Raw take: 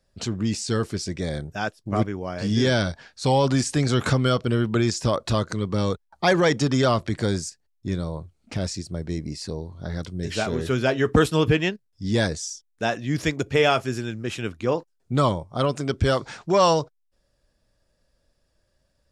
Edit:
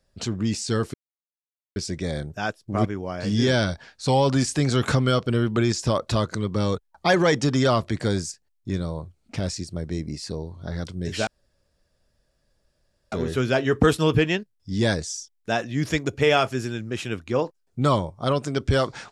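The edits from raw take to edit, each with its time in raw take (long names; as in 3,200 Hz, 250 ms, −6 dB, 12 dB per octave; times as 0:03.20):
0:00.94: splice in silence 0.82 s
0:10.45: splice in room tone 1.85 s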